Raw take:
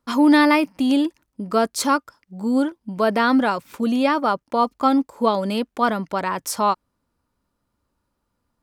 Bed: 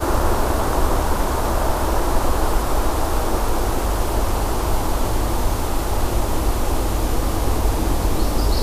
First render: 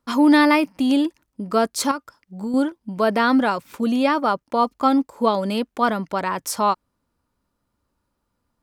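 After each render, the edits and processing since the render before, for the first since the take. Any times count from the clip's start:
0:01.91–0:02.54: downward compressor, threshold −23 dBFS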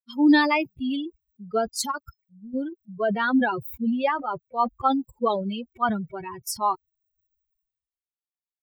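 spectral dynamics exaggerated over time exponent 3
level that may fall only so fast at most 63 dB per second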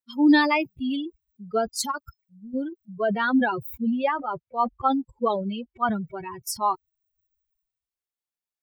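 0:03.87–0:05.93: high-frequency loss of the air 120 metres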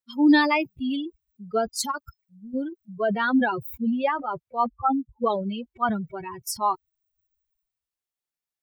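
0:04.66–0:05.24: expanding power law on the bin magnitudes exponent 2.5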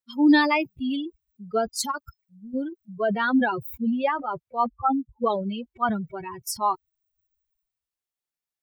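no processing that can be heard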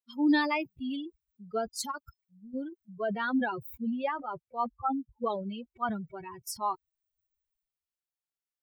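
level −7.5 dB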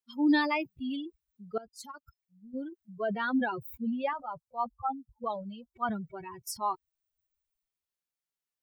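0:01.58–0:02.79: fade in, from −19 dB
0:04.13–0:05.74: phaser with its sweep stopped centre 850 Hz, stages 4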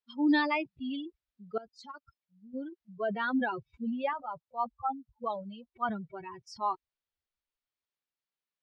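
low-pass filter 4,700 Hz 24 dB per octave
low-shelf EQ 120 Hz −8 dB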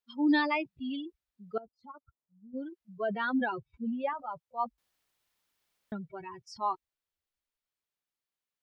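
0:01.59–0:02.57: Savitzky-Golay smoothing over 65 samples
0:03.58–0:04.19: high-shelf EQ 2,900 Hz −10.5 dB
0:04.78–0:05.92: fill with room tone

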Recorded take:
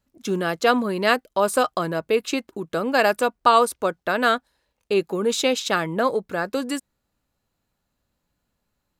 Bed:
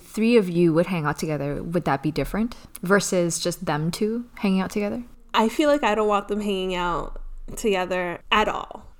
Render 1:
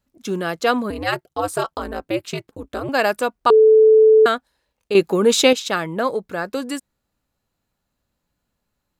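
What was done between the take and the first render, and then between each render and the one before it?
0:00.90–0:02.89: ring modulation 110 Hz
0:03.50–0:04.26: beep over 437 Hz −7.5 dBFS
0:04.95–0:05.53: clip gain +7 dB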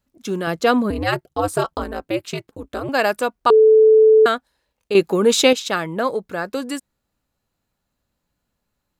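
0:00.47–0:01.84: low-shelf EQ 340 Hz +7.5 dB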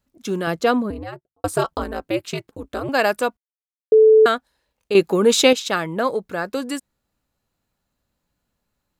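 0:00.45–0:01.44: fade out and dull
0:03.37–0:03.92: silence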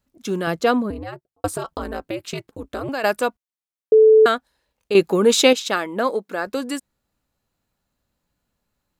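0:01.49–0:03.04: downward compressor, threshold −22 dBFS
0:05.29–0:06.47: linear-phase brick-wall high-pass 180 Hz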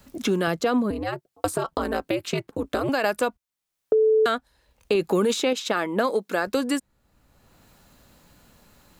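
brickwall limiter −13 dBFS, peak gain reduction 11 dB
multiband upward and downward compressor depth 70%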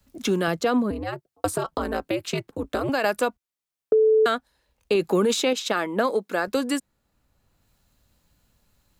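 multiband upward and downward expander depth 40%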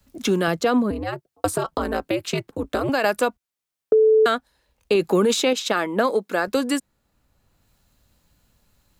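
level +2.5 dB

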